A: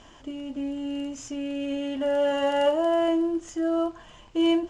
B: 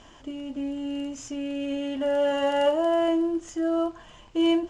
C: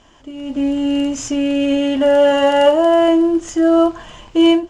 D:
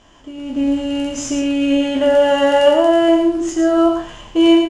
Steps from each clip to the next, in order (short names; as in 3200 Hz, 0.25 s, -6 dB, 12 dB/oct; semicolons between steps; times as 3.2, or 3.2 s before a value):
nothing audible
AGC gain up to 14 dB
spectral trails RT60 0.33 s; echo 0.111 s -6 dB; gain -1 dB